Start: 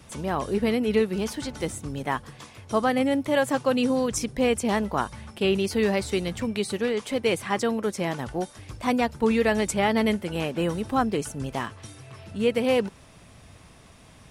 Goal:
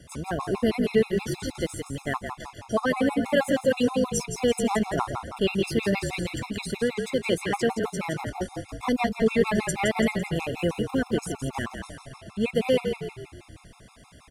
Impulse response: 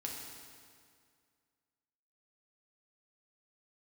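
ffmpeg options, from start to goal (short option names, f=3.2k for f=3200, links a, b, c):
-filter_complex "[0:a]asplit=7[a][b][c][d][e][f][g];[b]adelay=168,afreqshift=-41,volume=-7dB[h];[c]adelay=336,afreqshift=-82,volume=-13.6dB[i];[d]adelay=504,afreqshift=-123,volume=-20.1dB[j];[e]adelay=672,afreqshift=-164,volume=-26.7dB[k];[f]adelay=840,afreqshift=-205,volume=-33.2dB[l];[g]adelay=1008,afreqshift=-246,volume=-39.8dB[m];[a][h][i][j][k][l][m]amix=inputs=7:normalize=0,afftfilt=real='re*gt(sin(2*PI*6.3*pts/sr)*(1-2*mod(floor(b*sr/1024/690),2)),0)':imag='im*gt(sin(2*PI*6.3*pts/sr)*(1-2*mod(floor(b*sr/1024/690),2)),0)':win_size=1024:overlap=0.75,volume=1.5dB"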